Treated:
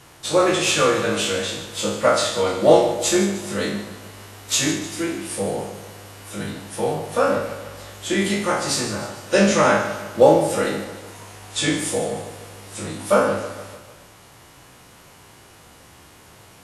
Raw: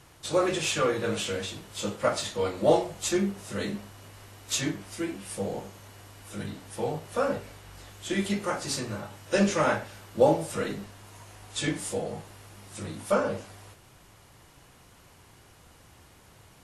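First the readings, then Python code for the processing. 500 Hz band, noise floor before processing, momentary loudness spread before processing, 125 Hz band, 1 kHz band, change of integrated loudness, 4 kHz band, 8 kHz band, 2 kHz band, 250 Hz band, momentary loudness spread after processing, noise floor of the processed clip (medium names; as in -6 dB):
+8.5 dB, -56 dBFS, 23 LU, +6.0 dB, +9.0 dB, +8.5 dB, +9.5 dB, +9.5 dB, +9.5 dB, +7.5 dB, 21 LU, -48 dBFS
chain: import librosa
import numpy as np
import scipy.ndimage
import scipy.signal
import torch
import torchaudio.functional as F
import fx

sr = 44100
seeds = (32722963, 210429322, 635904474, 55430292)

p1 = fx.spec_trails(x, sr, decay_s=0.61)
p2 = fx.low_shelf(p1, sr, hz=90.0, db=-9.5)
p3 = p2 + fx.echo_feedback(p2, sr, ms=150, feedback_pct=52, wet_db=-12.5, dry=0)
y = p3 * librosa.db_to_amplitude(6.5)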